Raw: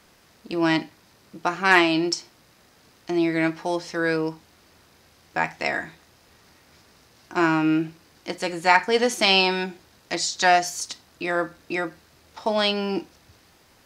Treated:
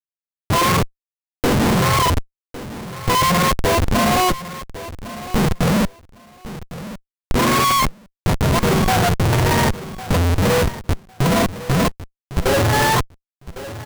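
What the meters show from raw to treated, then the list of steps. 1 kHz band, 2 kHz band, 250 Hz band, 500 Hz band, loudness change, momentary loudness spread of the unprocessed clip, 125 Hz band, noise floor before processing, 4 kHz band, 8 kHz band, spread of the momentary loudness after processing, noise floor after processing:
+6.0 dB, +0.5 dB, +5.0 dB, +4.5 dB, +5.0 dB, 14 LU, +18.0 dB, -57 dBFS, +2.5 dB, +8.0 dB, 17 LU, under -85 dBFS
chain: spectrum mirrored in octaves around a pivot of 590 Hz; sample leveller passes 3; LPF 4400 Hz; Schmitt trigger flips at -22.5 dBFS; on a send: feedback echo 1.105 s, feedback 18%, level -15 dB

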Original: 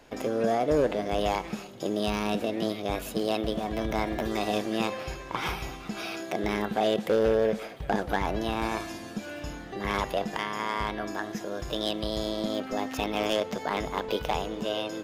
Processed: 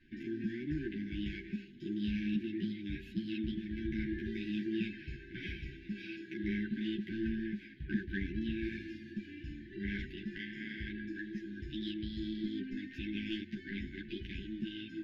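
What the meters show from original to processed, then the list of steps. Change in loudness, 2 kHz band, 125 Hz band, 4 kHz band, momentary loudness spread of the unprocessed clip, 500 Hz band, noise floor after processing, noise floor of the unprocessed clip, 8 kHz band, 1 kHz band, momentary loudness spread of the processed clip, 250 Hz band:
-10.0 dB, -8.5 dB, -5.0 dB, -13.0 dB, 10 LU, -19.5 dB, -52 dBFS, -42 dBFS, under -25 dB, under -40 dB, 8 LU, -4.5 dB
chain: FFT band-reject 390–1500 Hz; air absorption 340 m; ensemble effect; gain -2 dB

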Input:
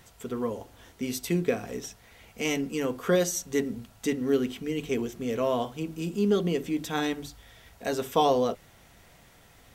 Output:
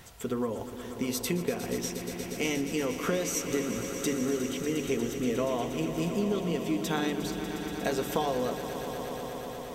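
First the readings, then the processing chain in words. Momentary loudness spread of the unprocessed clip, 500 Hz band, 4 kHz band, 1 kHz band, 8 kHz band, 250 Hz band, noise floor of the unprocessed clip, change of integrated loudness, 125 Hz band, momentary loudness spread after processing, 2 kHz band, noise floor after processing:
12 LU, -2.5 dB, 0.0 dB, -3.5 dB, +1.5 dB, -1.0 dB, -57 dBFS, -2.5 dB, -1.0 dB, 7 LU, 0.0 dB, -40 dBFS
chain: compressor, threshold -31 dBFS, peak gain reduction 12.5 dB; swelling echo 0.119 s, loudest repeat 5, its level -12.5 dB; gain +4 dB

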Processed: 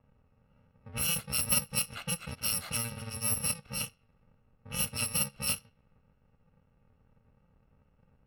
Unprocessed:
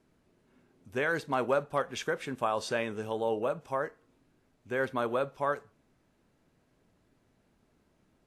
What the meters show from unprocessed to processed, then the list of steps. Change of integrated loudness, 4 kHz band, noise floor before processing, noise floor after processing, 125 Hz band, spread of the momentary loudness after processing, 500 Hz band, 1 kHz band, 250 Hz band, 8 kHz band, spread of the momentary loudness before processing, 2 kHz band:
+1.5 dB, +9.0 dB, -71 dBFS, -69 dBFS, +4.5 dB, 9 LU, -17.0 dB, -12.0 dB, -4.5 dB, +19.5 dB, 5 LU, -4.5 dB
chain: FFT order left unsorted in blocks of 128 samples; bell 6700 Hz -14 dB 0.76 oct; in parallel at -2 dB: compressor 4:1, threshold -50 dBFS, peak gain reduction 20.5 dB; on the sum: low-pass opened by the level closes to 1400 Hz, open at -26.5 dBFS; wow and flutter 17 cents; gain +3.5 dB

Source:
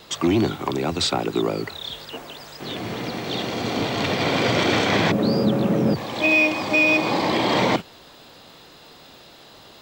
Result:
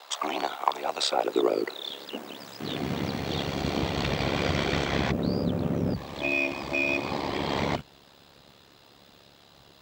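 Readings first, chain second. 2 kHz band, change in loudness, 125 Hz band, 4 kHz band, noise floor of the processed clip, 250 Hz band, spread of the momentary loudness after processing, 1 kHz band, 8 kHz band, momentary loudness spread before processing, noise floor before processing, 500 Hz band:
-8.5 dB, -7.5 dB, -4.5 dB, -6.5 dB, -56 dBFS, -8.0 dB, 9 LU, -5.0 dB, -6.0 dB, 14 LU, -47 dBFS, -6.0 dB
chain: high-pass sweep 760 Hz -> 98 Hz, 0.74–3.5; ring modulator 35 Hz; vocal rider within 4 dB 2 s; gain -4.5 dB

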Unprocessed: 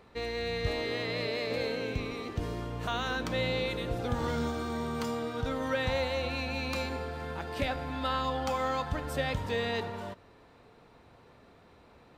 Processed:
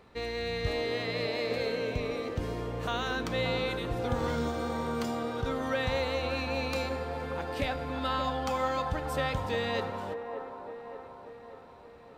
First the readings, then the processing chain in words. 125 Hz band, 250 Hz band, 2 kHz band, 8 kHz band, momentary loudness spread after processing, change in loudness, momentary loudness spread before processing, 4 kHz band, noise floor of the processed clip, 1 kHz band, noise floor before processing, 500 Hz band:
0.0 dB, +0.5 dB, 0.0 dB, 0.0 dB, 13 LU, +0.5 dB, 6 LU, 0.0 dB, -51 dBFS, +1.5 dB, -58 dBFS, +1.5 dB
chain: band-limited delay 0.582 s, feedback 55%, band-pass 650 Hz, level -5 dB

